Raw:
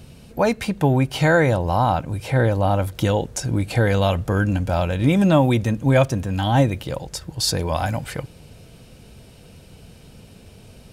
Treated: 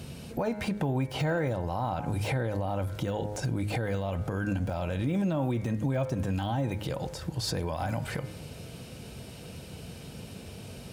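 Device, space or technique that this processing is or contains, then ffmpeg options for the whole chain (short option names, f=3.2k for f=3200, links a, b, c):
podcast mastering chain: -af "highpass=72,bandreject=f=104.3:t=h:w=4,bandreject=f=208.6:t=h:w=4,bandreject=f=312.9:t=h:w=4,bandreject=f=417.2:t=h:w=4,bandreject=f=521.5:t=h:w=4,bandreject=f=625.8:t=h:w=4,bandreject=f=730.1:t=h:w=4,bandreject=f=834.4:t=h:w=4,bandreject=f=938.7:t=h:w=4,bandreject=f=1.043k:t=h:w=4,bandreject=f=1.1473k:t=h:w=4,bandreject=f=1.2516k:t=h:w=4,bandreject=f=1.3559k:t=h:w=4,bandreject=f=1.4602k:t=h:w=4,bandreject=f=1.5645k:t=h:w=4,bandreject=f=1.6688k:t=h:w=4,bandreject=f=1.7731k:t=h:w=4,bandreject=f=1.8774k:t=h:w=4,bandreject=f=1.9817k:t=h:w=4,bandreject=f=2.086k:t=h:w=4,bandreject=f=2.1903k:t=h:w=4,bandreject=f=2.2946k:t=h:w=4,deesser=0.95,acompressor=threshold=-25dB:ratio=4,alimiter=limit=-24dB:level=0:latency=1:release=118,volume=3.5dB" -ar 48000 -c:a libmp3lame -b:a 112k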